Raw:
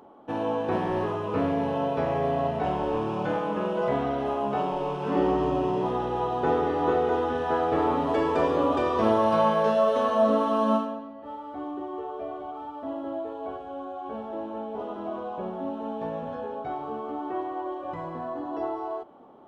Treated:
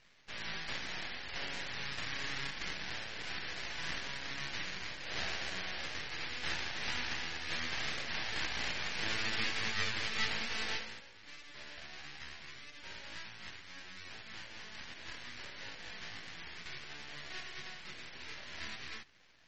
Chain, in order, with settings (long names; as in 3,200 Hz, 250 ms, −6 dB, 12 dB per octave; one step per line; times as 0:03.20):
each half-wave held at its own peak
Butterworth high-pass 1,600 Hz 48 dB per octave
half-wave rectification
high-frequency loss of the air 92 metres
level −2.5 dB
MP3 32 kbit/s 48,000 Hz